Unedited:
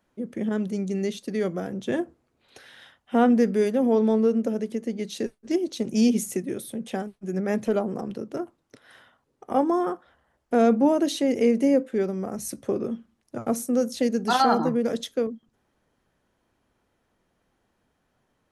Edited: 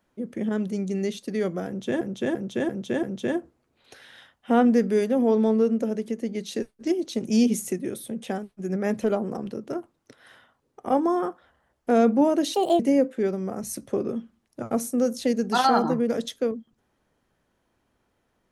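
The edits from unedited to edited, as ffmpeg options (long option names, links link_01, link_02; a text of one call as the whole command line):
ffmpeg -i in.wav -filter_complex "[0:a]asplit=7[link_01][link_02][link_03][link_04][link_05][link_06][link_07];[link_01]atrim=end=2.012[link_08];[link_02]atrim=start=1.668:end=2.012[link_09];[link_03]atrim=start=1.668:end=2.012[link_10];[link_04]atrim=start=1.668:end=2.012[link_11];[link_05]atrim=start=1.668:end=11.184[link_12];[link_06]atrim=start=11.18:end=11.55,asetpts=PTS-STARTPTS,asetrate=63945,aresample=44100,atrim=end_sample=11253,asetpts=PTS-STARTPTS[link_13];[link_07]atrim=start=11.546[link_14];[link_08][link_09]acrossfade=duration=0.004:curve1=hsin:curve2=hsin[link_15];[link_15][link_10]acrossfade=duration=0.004:curve1=hsin:curve2=hsin[link_16];[link_16][link_11]acrossfade=duration=0.004:curve1=hsin:curve2=hsin[link_17];[link_17][link_12]acrossfade=duration=0.004:curve1=hsin:curve2=hsin[link_18];[link_18][link_13]acrossfade=duration=0.004:curve1=hsin:curve2=hsin[link_19];[link_19][link_14]acrossfade=duration=0.004:curve1=hsin:curve2=hsin" out.wav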